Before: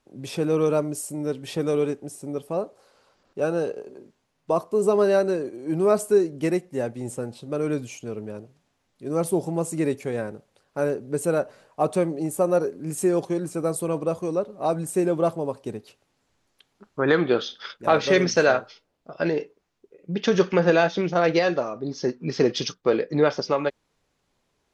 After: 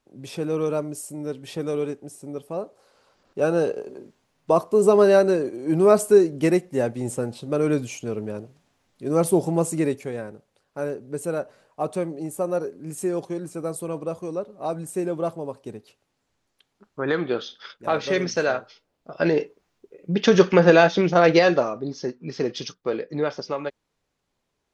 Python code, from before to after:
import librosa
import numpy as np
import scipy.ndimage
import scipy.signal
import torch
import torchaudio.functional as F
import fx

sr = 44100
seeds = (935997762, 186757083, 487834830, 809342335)

y = fx.gain(x, sr, db=fx.line((2.59, -3.0), (3.61, 4.0), (9.64, 4.0), (10.21, -4.0), (18.6, -4.0), (19.39, 4.5), (21.63, 4.5), (22.15, -5.0)))